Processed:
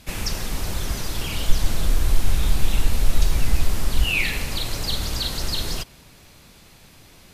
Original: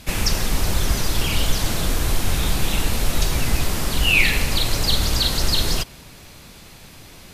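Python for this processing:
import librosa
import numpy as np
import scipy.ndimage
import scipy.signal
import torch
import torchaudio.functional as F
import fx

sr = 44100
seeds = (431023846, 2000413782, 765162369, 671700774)

y = fx.low_shelf(x, sr, hz=62.0, db=12.0, at=(1.48, 4.04))
y = F.gain(torch.from_numpy(y), -6.0).numpy()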